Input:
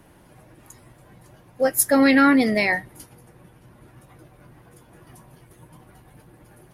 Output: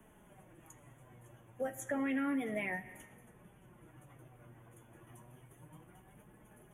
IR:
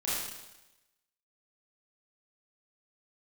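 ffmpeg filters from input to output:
-filter_complex "[0:a]flanger=delay=4.6:depth=4.4:regen=39:speed=0.31:shape=sinusoidal,asuperstop=centerf=4600:order=12:qfactor=1.8,asplit=2[a][b];[1:a]atrim=start_sample=2205[c];[b][c]afir=irnorm=-1:irlink=0,volume=-22dB[d];[a][d]amix=inputs=2:normalize=0,acrossover=split=110|220|6600[e][f][g][h];[e]acompressor=threshold=-59dB:ratio=4[i];[f]acompressor=threshold=-40dB:ratio=4[j];[g]acompressor=threshold=-31dB:ratio=4[k];[h]acompressor=threshold=-55dB:ratio=4[l];[i][j][k][l]amix=inputs=4:normalize=0,volume=-5.5dB"

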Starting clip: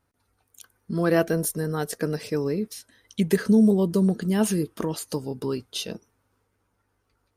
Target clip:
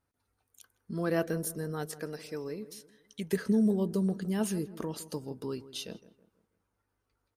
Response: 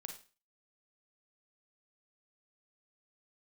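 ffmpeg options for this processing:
-filter_complex "[0:a]asettb=1/sr,asplit=3[a][b][c];[a]atrim=end=1.904[d];[b]atrim=start=1.9:end=3.33,asetpts=PTS-STARTPTS,afade=t=in:d=0.004:c=qsin,afade=t=out:st=1.426:d=0.004:c=qsin,equalizer=f=120:w=0.38:g=-7.5[e];[c]atrim=start=3.326[f];[d][e]acrossfade=d=0.004:c1=hsin:c2=qsin[g];[g][f]acrossfade=d=0.004:c1=qsin:c2=hsin,asplit=2[h][i];[i]adelay=162,lowpass=f=1.5k:p=1,volume=-15.5dB,asplit=2[j][k];[k]adelay=162,lowpass=f=1.5k:p=1,volume=0.43,asplit=2[l][m];[m]adelay=162,lowpass=f=1.5k:p=1,volume=0.43,asplit=2[n][o];[o]adelay=162,lowpass=f=1.5k:p=1,volume=0.43[p];[h][j][l][n][p]amix=inputs=5:normalize=0,volume=-8.5dB"

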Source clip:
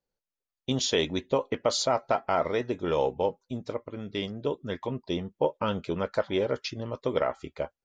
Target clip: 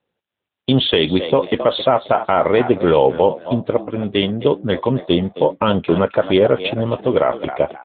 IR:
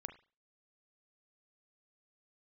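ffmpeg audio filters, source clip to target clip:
-filter_complex "[0:a]equalizer=f=3.1k:w=6.2:g=3.5,asplit=2[a][b];[b]asplit=3[c][d][e];[c]adelay=266,afreqshift=87,volume=-14.5dB[f];[d]adelay=532,afreqshift=174,volume=-24.7dB[g];[e]adelay=798,afreqshift=261,volume=-34.8dB[h];[f][g][h]amix=inputs=3:normalize=0[i];[a][i]amix=inputs=2:normalize=0,alimiter=level_in=17dB:limit=-1dB:release=50:level=0:latency=1,volume=-2dB" -ar 8000 -c:a libopencore_amrnb -b:a 10200

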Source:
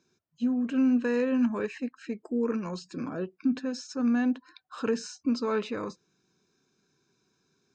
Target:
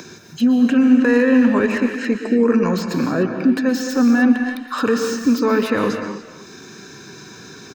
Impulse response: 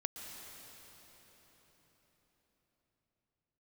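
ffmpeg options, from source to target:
-filter_complex "[0:a]highpass=f=58:w=0.5412,highpass=f=58:w=1.3066,equalizer=f=1.8k:t=o:w=0.27:g=7.5,asplit=2[a][b];[b]acompressor=mode=upward:threshold=-29dB:ratio=2.5,volume=1.5dB[c];[a][c]amix=inputs=2:normalize=0,alimiter=limit=-15dB:level=0:latency=1:release=96,acrossover=split=490|2100[d][e][f];[f]aeval=exprs='0.02*(abs(mod(val(0)/0.02+3,4)-2)-1)':c=same[g];[d][e][g]amix=inputs=3:normalize=0,asplit=2[h][i];[i]adelay=300,highpass=300,lowpass=3.4k,asoftclip=type=hard:threshold=-23.5dB,volume=-12dB[j];[h][j]amix=inputs=2:normalize=0[k];[1:a]atrim=start_sample=2205,afade=t=out:st=0.35:d=0.01,atrim=end_sample=15876[l];[k][l]afir=irnorm=-1:irlink=0,volume=9dB"

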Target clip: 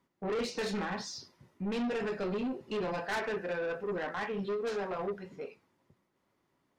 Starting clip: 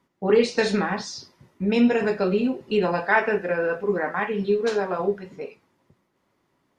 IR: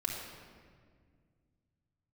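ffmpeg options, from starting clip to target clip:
-af "asoftclip=type=tanh:threshold=-23.5dB,volume=-6.5dB"

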